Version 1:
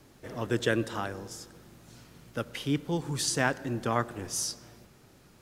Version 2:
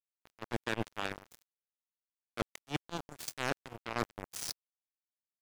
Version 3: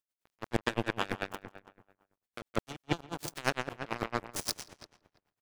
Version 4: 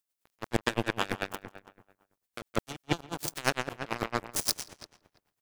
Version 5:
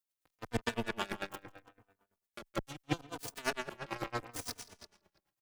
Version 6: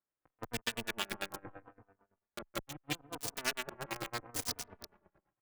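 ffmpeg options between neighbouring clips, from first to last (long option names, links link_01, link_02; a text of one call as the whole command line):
ffmpeg -i in.wav -af "areverse,acompressor=threshold=-36dB:ratio=5,areverse,acrusher=bits=4:mix=0:aa=0.5,volume=5dB" out.wav
ffmpeg -i in.wav -filter_complex "[0:a]asplit=2[link_01][link_02];[link_02]adelay=166,lowpass=frequency=3400:poles=1,volume=-3dB,asplit=2[link_03][link_04];[link_04]adelay=166,lowpass=frequency=3400:poles=1,volume=0.46,asplit=2[link_05][link_06];[link_06]adelay=166,lowpass=frequency=3400:poles=1,volume=0.46,asplit=2[link_07][link_08];[link_08]adelay=166,lowpass=frequency=3400:poles=1,volume=0.46,asplit=2[link_09][link_10];[link_10]adelay=166,lowpass=frequency=3400:poles=1,volume=0.46,asplit=2[link_11][link_12];[link_12]adelay=166,lowpass=frequency=3400:poles=1,volume=0.46[link_13];[link_03][link_05][link_07][link_09][link_11][link_13]amix=inputs=6:normalize=0[link_14];[link_01][link_14]amix=inputs=2:normalize=0,aeval=exprs='val(0)*pow(10,-23*(0.5-0.5*cos(2*PI*8.9*n/s))/20)':channel_layout=same,volume=8dB" out.wav
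ffmpeg -i in.wav -af "highshelf=frequency=5500:gain=6.5,volume=2dB" out.wav
ffmpeg -i in.wav -filter_complex "[0:a]acrossover=split=2700[link_01][link_02];[link_02]alimiter=limit=-17dB:level=0:latency=1:release=188[link_03];[link_01][link_03]amix=inputs=2:normalize=0,asplit=2[link_04][link_05];[link_05]adelay=3.2,afreqshift=-0.76[link_06];[link_04][link_06]amix=inputs=2:normalize=1,volume=-3dB" out.wav
ffmpeg -i in.wav -filter_complex "[0:a]acrossover=split=1900[link_01][link_02];[link_01]acompressor=threshold=-43dB:ratio=6[link_03];[link_02]acrusher=bits=6:mix=0:aa=0.000001[link_04];[link_03][link_04]amix=inputs=2:normalize=0,volume=4.5dB" out.wav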